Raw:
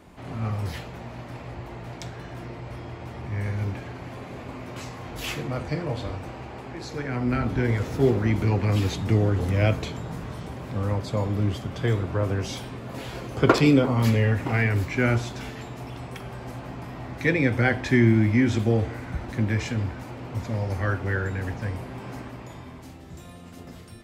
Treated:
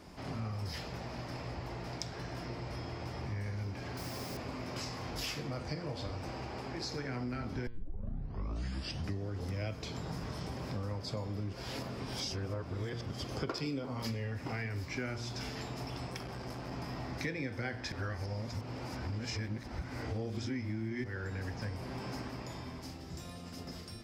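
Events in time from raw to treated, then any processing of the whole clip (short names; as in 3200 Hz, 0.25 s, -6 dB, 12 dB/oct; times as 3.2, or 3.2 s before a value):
3.97–4.37 requantised 8-bit, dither triangular
7.67 tape start 1.61 s
11.53–13.24 reverse
16.11–16.72 core saturation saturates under 430 Hz
17.92–21.04 reverse
whole clip: bell 5100 Hz +14 dB 0.35 oct; de-hum 117.6 Hz, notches 40; compressor 6:1, threshold -33 dBFS; gain -2.5 dB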